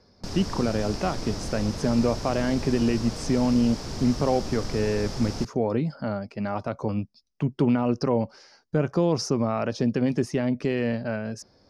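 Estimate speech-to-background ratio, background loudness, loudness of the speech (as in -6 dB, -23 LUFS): 8.5 dB, -35.0 LUFS, -26.5 LUFS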